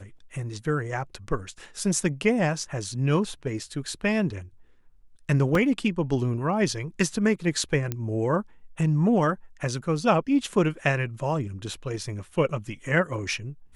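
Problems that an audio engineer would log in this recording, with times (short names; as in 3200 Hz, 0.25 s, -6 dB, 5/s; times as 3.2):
5.55 gap 2.4 ms
7.92 pop -14 dBFS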